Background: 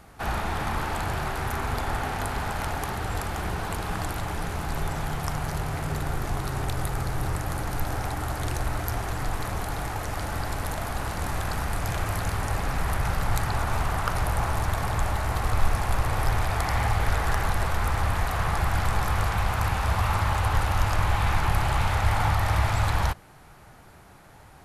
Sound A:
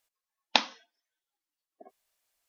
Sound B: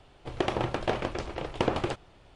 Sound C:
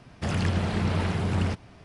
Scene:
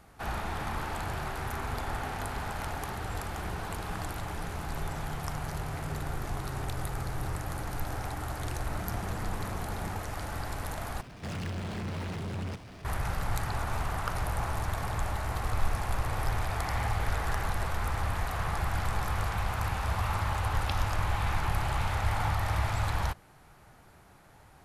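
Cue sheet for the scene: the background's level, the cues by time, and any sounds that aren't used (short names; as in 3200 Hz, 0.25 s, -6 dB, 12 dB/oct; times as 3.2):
background -6 dB
8.46 add C -13 dB + elliptic low-pass 1300 Hz
11.01 replace with C -14.5 dB + power-law curve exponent 0.5
20.14 add A -2 dB + compressor, threshold -32 dBFS
not used: B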